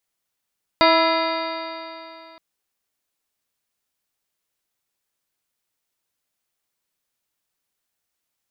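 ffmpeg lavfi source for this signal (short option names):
-f lavfi -i "aevalsrc='0.0891*pow(10,-3*t/2.85)*sin(2*PI*323.53*t)+0.168*pow(10,-3*t/2.85)*sin(2*PI*650.25*t)+0.158*pow(10,-3*t/2.85)*sin(2*PI*983.28*t)+0.1*pow(10,-3*t/2.85)*sin(2*PI*1325.67*t)+0.0398*pow(10,-3*t/2.85)*sin(2*PI*1680.3*t)+0.0794*pow(10,-3*t/2.85)*sin(2*PI*2049.89*t)+0.0422*pow(10,-3*t/2.85)*sin(2*PI*2436.96*t)+0.0251*pow(10,-3*t/2.85)*sin(2*PI*2843.81*t)+0.0112*pow(10,-3*t/2.85)*sin(2*PI*3272.54*t)+0.0708*pow(10,-3*t/2.85)*sin(2*PI*3725.02*t)+0.0282*pow(10,-3*t/2.85)*sin(2*PI*4202.92*t)+0.0631*pow(10,-3*t/2.85)*sin(2*PI*4707.7*t)':d=1.57:s=44100"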